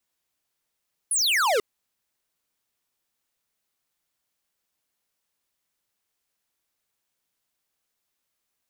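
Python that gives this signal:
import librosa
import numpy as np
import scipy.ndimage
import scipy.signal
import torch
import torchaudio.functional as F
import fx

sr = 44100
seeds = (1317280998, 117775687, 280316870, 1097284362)

y = fx.laser_zap(sr, level_db=-21.5, start_hz=11000.0, end_hz=390.0, length_s=0.49, wave='square')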